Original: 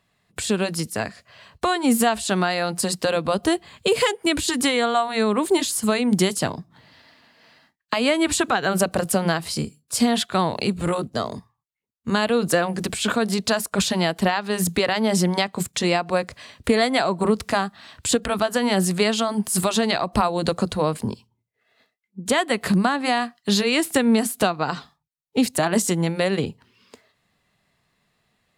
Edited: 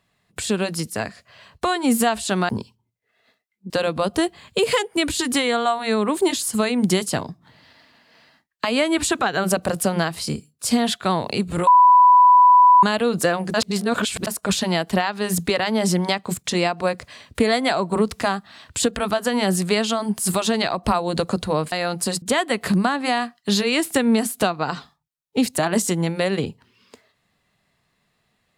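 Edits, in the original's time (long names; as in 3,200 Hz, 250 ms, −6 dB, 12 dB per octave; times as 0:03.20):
0:02.49–0:02.99: swap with 0:21.01–0:22.22
0:10.96–0:12.12: beep over 992 Hz −8 dBFS
0:12.83–0:13.56: reverse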